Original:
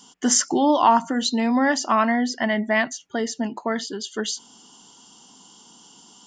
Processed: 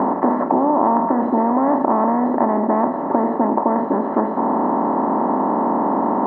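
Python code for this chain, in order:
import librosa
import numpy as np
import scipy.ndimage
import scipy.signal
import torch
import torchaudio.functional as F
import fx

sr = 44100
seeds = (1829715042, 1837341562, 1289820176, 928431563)

y = fx.bin_compress(x, sr, power=0.2)
y = scipy.signal.sosfilt(scipy.signal.butter(4, 1000.0, 'lowpass', fs=sr, output='sos'), y)
y = fx.band_squash(y, sr, depth_pct=70)
y = y * librosa.db_to_amplitude(-2.5)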